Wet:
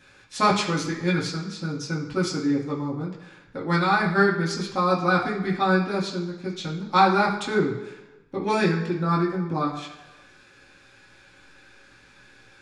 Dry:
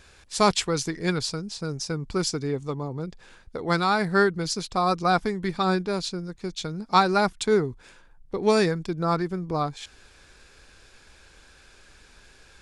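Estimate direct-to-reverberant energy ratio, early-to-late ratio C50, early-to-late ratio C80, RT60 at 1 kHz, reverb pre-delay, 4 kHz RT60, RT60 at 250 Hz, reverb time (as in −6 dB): −6.5 dB, 6.5 dB, 9.0 dB, 1.1 s, 3 ms, 1.1 s, 0.95 s, 1.2 s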